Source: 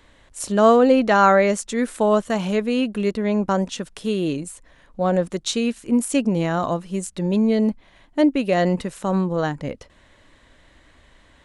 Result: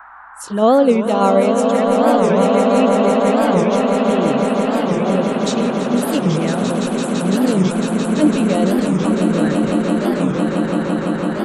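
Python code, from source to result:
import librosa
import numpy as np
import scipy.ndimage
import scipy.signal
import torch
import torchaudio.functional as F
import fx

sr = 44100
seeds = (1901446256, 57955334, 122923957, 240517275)

p1 = fx.level_steps(x, sr, step_db=14)
p2 = x + (p1 * 10.0 ** (-0.5 / 20.0))
p3 = fx.add_hum(p2, sr, base_hz=60, snr_db=26)
p4 = fx.noise_reduce_blind(p3, sr, reduce_db=19)
p5 = fx.env_flanger(p4, sr, rest_ms=4.0, full_db=-12.5)
p6 = fx.dmg_noise_band(p5, sr, seeds[0], low_hz=770.0, high_hz=1600.0, level_db=-38.0)
p7 = p6 + fx.echo_swell(p6, sr, ms=168, loudest=8, wet_db=-7.5, dry=0)
p8 = fx.record_warp(p7, sr, rpm=45.0, depth_cents=250.0)
y = p8 * 10.0 ** (-1.5 / 20.0)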